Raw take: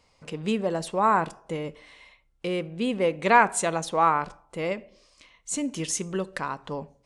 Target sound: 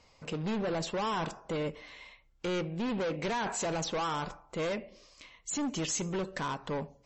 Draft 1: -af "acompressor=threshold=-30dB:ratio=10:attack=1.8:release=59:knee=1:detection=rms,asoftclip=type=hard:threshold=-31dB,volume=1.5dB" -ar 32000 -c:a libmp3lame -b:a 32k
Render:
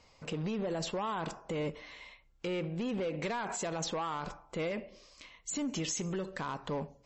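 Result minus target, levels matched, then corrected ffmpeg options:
compressor: peak gain reduction +8 dB
-af "acompressor=threshold=-21dB:ratio=10:attack=1.8:release=59:knee=1:detection=rms,asoftclip=type=hard:threshold=-31dB,volume=1.5dB" -ar 32000 -c:a libmp3lame -b:a 32k

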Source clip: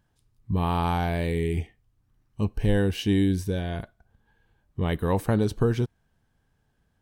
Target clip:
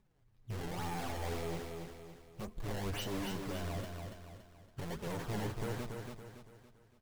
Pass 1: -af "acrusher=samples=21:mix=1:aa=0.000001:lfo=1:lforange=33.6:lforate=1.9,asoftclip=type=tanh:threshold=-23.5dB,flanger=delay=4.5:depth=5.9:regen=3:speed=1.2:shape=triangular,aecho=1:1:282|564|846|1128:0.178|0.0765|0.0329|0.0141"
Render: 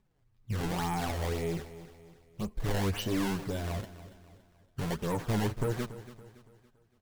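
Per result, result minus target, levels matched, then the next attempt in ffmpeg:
echo-to-direct -10 dB; soft clip: distortion -6 dB
-af "acrusher=samples=21:mix=1:aa=0.000001:lfo=1:lforange=33.6:lforate=1.9,asoftclip=type=tanh:threshold=-23.5dB,flanger=delay=4.5:depth=5.9:regen=3:speed=1.2:shape=triangular,aecho=1:1:282|564|846|1128|1410:0.562|0.242|0.104|0.0447|0.0192"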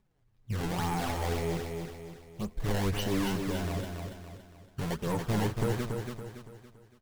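soft clip: distortion -6 dB
-af "acrusher=samples=21:mix=1:aa=0.000001:lfo=1:lforange=33.6:lforate=1.9,asoftclip=type=tanh:threshold=-35dB,flanger=delay=4.5:depth=5.9:regen=3:speed=1.2:shape=triangular,aecho=1:1:282|564|846|1128|1410:0.562|0.242|0.104|0.0447|0.0192"

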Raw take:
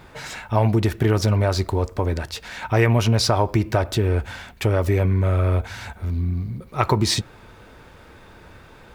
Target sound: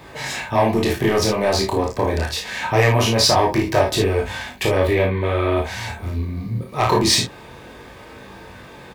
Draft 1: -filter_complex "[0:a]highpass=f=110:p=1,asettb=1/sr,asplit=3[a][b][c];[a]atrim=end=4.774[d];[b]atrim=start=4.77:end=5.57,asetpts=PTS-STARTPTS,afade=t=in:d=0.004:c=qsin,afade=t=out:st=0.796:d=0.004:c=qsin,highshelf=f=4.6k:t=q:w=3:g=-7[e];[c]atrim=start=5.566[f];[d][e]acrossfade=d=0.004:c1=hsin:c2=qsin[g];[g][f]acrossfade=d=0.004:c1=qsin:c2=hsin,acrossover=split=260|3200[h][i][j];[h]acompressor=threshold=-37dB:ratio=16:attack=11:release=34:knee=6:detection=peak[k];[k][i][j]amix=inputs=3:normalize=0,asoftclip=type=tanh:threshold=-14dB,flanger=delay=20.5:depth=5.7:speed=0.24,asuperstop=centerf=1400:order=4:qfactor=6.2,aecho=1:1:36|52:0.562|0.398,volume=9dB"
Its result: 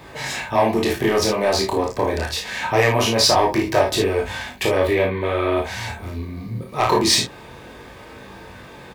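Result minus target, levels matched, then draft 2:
compressor: peak gain reduction +7 dB
-filter_complex "[0:a]highpass=f=110:p=1,asettb=1/sr,asplit=3[a][b][c];[a]atrim=end=4.774[d];[b]atrim=start=4.77:end=5.57,asetpts=PTS-STARTPTS,afade=t=in:d=0.004:c=qsin,afade=t=out:st=0.796:d=0.004:c=qsin,highshelf=f=4.6k:t=q:w=3:g=-7[e];[c]atrim=start=5.566[f];[d][e]acrossfade=d=0.004:c1=hsin:c2=qsin[g];[g][f]acrossfade=d=0.004:c1=qsin:c2=hsin,acrossover=split=260|3200[h][i][j];[h]acompressor=threshold=-29.5dB:ratio=16:attack=11:release=34:knee=6:detection=peak[k];[k][i][j]amix=inputs=3:normalize=0,asoftclip=type=tanh:threshold=-14dB,flanger=delay=20.5:depth=5.7:speed=0.24,asuperstop=centerf=1400:order=4:qfactor=6.2,aecho=1:1:36|52:0.562|0.398,volume=9dB"

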